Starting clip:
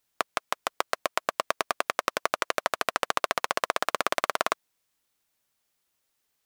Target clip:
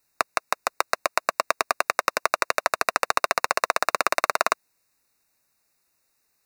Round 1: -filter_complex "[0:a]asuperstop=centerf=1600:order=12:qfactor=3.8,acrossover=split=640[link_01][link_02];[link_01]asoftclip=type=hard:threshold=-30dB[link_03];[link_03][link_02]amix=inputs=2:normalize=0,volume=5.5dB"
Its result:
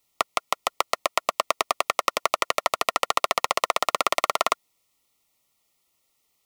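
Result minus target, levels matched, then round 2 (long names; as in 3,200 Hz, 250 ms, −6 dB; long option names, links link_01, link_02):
4,000 Hz band +4.0 dB
-filter_complex "[0:a]asuperstop=centerf=3200:order=12:qfactor=3.8,acrossover=split=640[link_01][link_02];[link_01]asoftclip=type=hard:threshold=-30dB[link_03];[link_03][link_02]amix=inputs=2:normalize=0,volume=5.5dB"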